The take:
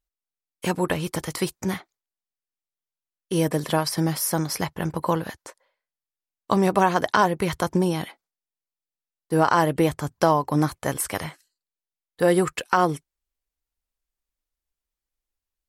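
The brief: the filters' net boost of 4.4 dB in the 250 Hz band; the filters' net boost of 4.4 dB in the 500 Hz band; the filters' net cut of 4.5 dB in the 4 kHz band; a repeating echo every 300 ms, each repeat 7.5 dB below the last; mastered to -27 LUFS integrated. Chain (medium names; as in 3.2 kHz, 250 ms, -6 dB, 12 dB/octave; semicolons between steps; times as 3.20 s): peaking EQ 250 Hz +5.5 dB; peaking EQ 500 Hz +4 dB; peaking EQ 4 kHz -6.5 dB; feedback delay 300 ms, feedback 42%, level -7.5 dB; trim -6.5 dB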